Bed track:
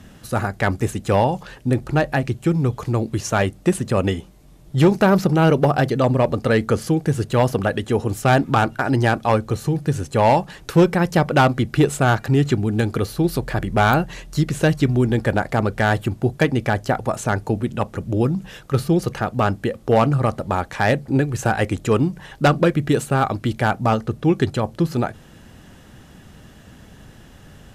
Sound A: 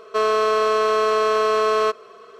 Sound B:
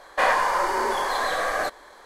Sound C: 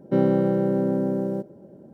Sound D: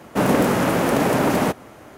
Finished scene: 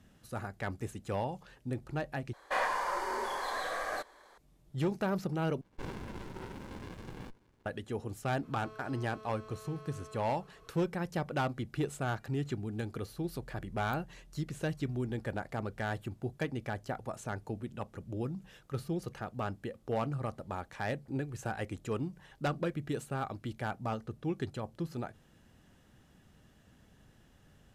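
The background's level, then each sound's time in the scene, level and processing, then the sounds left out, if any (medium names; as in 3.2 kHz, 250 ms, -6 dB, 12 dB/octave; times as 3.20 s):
bed track -17.5 dB
2.33 s: replace with B -11 dB
5.61 s: replace with B -15 dB + sliding maximum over 65 samples
8.43 s: add A -17 dB + compression 10:1, threshold -31 dBFS
not used: C, D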